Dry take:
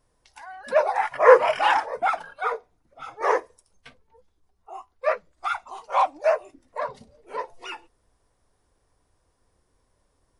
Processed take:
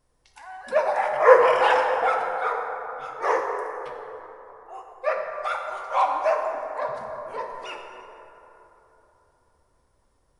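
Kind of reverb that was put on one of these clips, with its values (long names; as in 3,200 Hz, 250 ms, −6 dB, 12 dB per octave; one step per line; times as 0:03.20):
dense smooth reverb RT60 3.5 s, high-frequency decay 0.4×, DRR 1.5 dB
level −2 dB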